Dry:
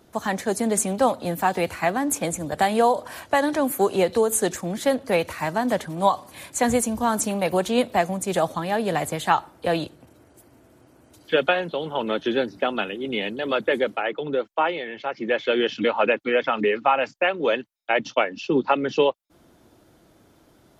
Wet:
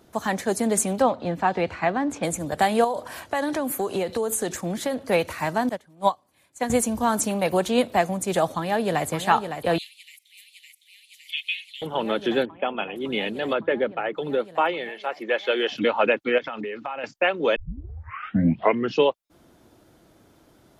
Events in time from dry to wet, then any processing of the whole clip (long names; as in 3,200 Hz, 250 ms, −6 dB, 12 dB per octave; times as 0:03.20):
0:01.02–0:02.23: high-frequency loss of the air 150 metres
0:02.84–0:04.97: downward compressor, threshold −21 dBFS
0:05.69–0:06.70: expander for the loud parts 2.5 to 1, over −29 dBFS
0:08.57–0:09.06: delay throw 560 ms, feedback 85%, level −8 dB
0:09.78–0:11.82: Butterworth high-pass 2,100 Hz 96 dB per octave
0:12.45–0:12.96: Chebyshev low-pass with heavy ripple 3,400 Hz, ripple 6 dB
0:13.53–0:14.14: high-frequency loss of the air 370 metres
0:14.89–0:15.71: high-pass filter 390 Hz
0:16.38–0:17.04: downward compressor 5 to 1, threshold −29 dBFS
0:17.56: tape start 1.44 s